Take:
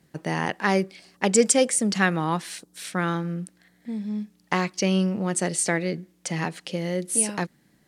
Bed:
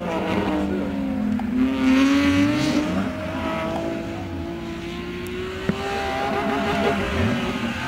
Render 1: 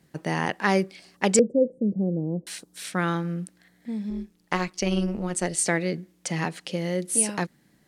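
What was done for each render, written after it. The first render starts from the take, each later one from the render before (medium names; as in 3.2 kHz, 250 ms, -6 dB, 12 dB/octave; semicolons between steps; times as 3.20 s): 1.39–2.47 s: elliptic low-pass 540 Hz, stop band 60 dB; 4.10–5.57 s: AM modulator 170 Hz, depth 45%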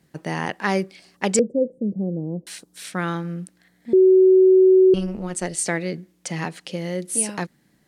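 3.93–4.94 s: bleep 375 Hz -9.5 dBFS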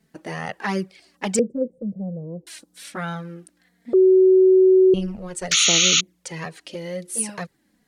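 5.51–6.01 s: painted sound noise 1.2–7 kHz -14 dBFS; touch-sensitive flanger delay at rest 4.6 ms, full sweep at -13.5 dBFS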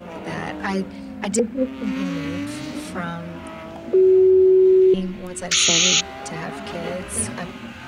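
add bed -10 dB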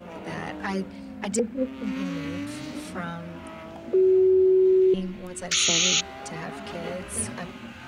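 trim -5 dB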